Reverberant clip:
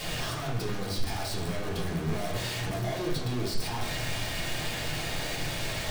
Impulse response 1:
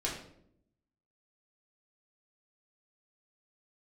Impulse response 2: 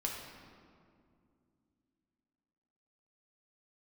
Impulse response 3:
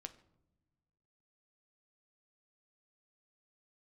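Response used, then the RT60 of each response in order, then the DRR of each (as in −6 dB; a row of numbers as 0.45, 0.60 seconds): 1; 0.70 s, 2.4 s, non-exponential decay; −5.0, −1.5, 8.0 decibels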